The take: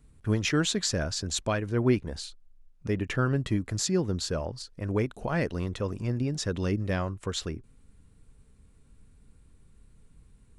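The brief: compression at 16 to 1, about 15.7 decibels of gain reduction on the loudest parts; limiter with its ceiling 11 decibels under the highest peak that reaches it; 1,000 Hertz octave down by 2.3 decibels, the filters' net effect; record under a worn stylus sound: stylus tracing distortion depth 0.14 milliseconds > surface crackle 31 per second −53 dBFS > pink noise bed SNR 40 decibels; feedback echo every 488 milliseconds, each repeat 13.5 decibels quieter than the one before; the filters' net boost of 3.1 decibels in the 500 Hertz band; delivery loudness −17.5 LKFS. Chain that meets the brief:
parametric band 500 Hz +5 dB
parametric band 1,000 Hz −5 dB
downward compressor 16 to 1, threshold −32 dBFS
brickwall limiter −33 dBFS
repeating echo 488 ms, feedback 21%, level −13.5 dB
stylus tracing distortion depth 0.14 ms
surface crackle 31 per second −53 dBFS
pink noise bed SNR 40 dB
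level +24.5 dB

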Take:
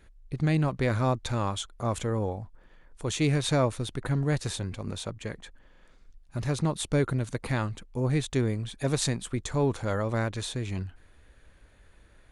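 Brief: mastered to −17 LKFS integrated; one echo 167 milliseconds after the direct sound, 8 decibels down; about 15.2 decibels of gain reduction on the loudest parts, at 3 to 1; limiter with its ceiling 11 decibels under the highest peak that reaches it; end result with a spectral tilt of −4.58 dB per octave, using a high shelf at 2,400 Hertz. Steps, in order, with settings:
high-shelf EQ 2,400 Hz +6.5 dB
downward compressor 3 to 1, threshold −42 dBFS
brickwall limiter −32 dBFS
single-tap delay 167 ms −8 dB
level +25 dB

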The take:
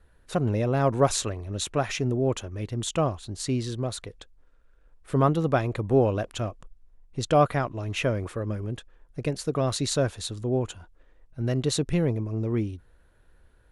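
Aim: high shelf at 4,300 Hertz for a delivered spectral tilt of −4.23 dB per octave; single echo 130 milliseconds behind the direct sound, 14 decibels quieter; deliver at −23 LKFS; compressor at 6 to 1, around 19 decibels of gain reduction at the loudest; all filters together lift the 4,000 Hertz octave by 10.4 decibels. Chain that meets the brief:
parametric band 4,000 Hz +9 dB
high-shelf EQ 4,300 Hz +5.5 dB
downward compressor 6 to 1, threshold −36 dBFS
single-tap delay 130 ms −14 dB
level +16 dB

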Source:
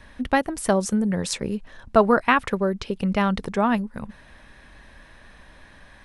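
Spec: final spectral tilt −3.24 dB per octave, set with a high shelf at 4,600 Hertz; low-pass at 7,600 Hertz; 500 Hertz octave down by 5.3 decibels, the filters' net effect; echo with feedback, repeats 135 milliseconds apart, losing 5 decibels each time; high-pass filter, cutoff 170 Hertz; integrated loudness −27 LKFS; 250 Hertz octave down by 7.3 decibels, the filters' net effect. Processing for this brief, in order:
high-pass filter 170 Hz
low-pass filter 7,600 Hz
parametric band 250 Hz −6.5 dB
parametric band 500 Hz −5.5 dB
high-shelf EQ 4,600 Hz +8 dB
repeating echo 135 ms, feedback 56%, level −5 dB
level −2.5 dB

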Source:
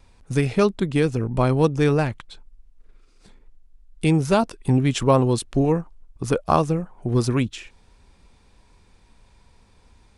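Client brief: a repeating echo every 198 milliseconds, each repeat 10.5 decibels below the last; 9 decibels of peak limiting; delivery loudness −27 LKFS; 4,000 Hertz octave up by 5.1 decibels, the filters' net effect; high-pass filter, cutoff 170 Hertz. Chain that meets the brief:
high-pass filter 170 Hz
parametric band 4,000 Hz +6.5 dB
brickwall limiter −11 dBFS
repeating echo 198 ms, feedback 30%, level −10.5 dB
level −2.5 dB

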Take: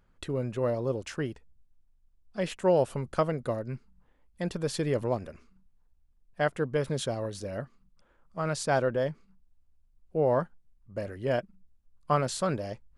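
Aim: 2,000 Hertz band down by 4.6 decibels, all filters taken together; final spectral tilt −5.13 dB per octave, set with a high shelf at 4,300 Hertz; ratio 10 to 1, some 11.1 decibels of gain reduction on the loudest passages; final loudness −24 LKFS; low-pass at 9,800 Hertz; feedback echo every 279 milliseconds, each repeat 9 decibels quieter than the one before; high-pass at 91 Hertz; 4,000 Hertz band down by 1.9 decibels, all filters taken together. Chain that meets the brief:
high-pass filter 91 Hz
low-pass filter 9,800 Hz
parametric band 2,000 Hz −7 dB
parametric band 4,000 Hz −5.5 dB
high-shelf EQ 4,300 Hz +8.5 dB
downward compressor 10 to 1, threshold −31 dBFS
repeating echo 279 ms, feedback 35%, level −9 dB
level +13.5 dB

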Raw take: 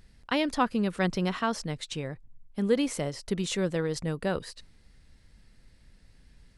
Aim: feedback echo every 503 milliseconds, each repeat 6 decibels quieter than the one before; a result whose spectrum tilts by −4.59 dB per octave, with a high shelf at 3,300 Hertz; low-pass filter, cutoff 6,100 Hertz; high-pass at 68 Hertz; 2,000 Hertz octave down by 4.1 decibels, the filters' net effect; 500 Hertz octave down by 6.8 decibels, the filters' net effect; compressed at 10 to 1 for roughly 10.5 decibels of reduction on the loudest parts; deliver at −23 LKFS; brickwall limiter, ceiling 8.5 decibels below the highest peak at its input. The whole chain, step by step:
high-pass filter 68 Hz
low-pass filter 6,100 Hz
parametric band 500 Hz −8 dB
parametric band 2,000 Hz −6.5 dB
high-shelf EQ 3,300 Hz +5.5 dB
downward compressor 10 to 1, threshold −33 dBFS
brickwall limiter −29.5 dBFS
repeating echo 503 ms, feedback 50%, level −6 dB
level +16.5 dB

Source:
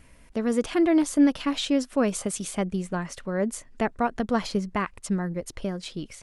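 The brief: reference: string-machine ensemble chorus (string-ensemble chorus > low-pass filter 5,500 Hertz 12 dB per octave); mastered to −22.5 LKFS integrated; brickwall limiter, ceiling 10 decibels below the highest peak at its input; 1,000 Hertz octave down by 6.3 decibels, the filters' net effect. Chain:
parametric band 1,000 Hz −9 dB
brickwall limiter −21 dBFS
string-ensemble chorus
low-pass filter 5,500 Hz 12 dB per octave
level +12.5 dB

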